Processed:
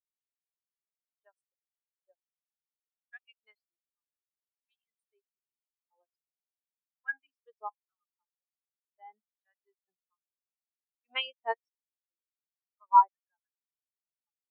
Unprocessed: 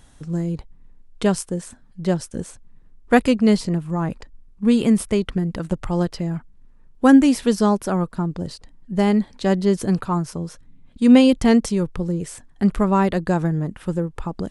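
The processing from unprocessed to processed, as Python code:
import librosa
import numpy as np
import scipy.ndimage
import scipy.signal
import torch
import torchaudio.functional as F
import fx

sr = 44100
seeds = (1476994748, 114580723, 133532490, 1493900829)

y = fx.cheby_harmonics(x, sr, harmonics=(3,), levels_db=(-15,), full_scale_db=-1.0)
y = fx.filter_lfo_highpass(y, sr, shape='saw_down', hz=1.3, low_hz=840.0, high_hz=2600.0, q=0.76)
y = fx.spectral_expand(y, sr, expansion=4.0)
y = y * 10.0 ** (-2.5 / 20.0)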